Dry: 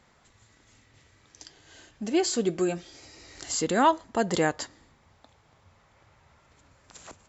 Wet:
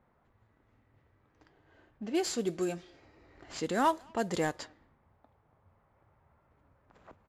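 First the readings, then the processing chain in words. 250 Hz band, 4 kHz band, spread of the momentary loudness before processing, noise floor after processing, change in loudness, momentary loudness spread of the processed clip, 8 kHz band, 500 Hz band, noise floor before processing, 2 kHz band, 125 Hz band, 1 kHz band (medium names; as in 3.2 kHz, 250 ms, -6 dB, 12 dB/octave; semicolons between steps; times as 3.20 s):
-6.0 dB, -7.5 dB, 16 LU, -71 dBFS, -6.5 dB, 16 LU, no reading, -6.0 dB, -62 dBFS, -6.5 dB, -6.0 dB, -6.0 dB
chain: CVSD coder 64 kbps; speakerphone echo 220 ms, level -27 dB; level-controlled noise filter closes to 1.2 kHz, open at -21.5 dBFS; trim -6 dB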